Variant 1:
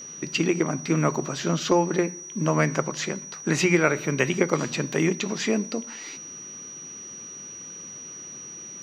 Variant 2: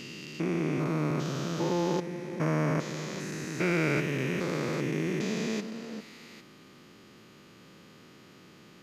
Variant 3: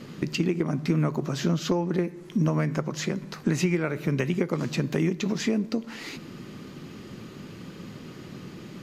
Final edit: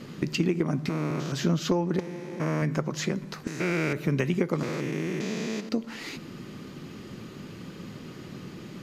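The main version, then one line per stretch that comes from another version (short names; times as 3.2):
3
0.89–1.32 from 2
1.99–2.62 from 2
3.47–3.93 from 2
4.63–5.69 from 2
not used: 1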